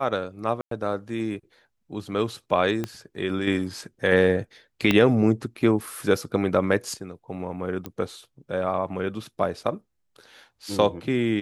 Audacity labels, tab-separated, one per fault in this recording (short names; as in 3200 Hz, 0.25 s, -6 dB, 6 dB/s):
0.610000	0.710000	gap 0.103 s
2.840000	2.840000	pop -15 dBFS
4.910000	4.910000	pop -7 dBFS
7.860000	7.860000	pop -18 dBFS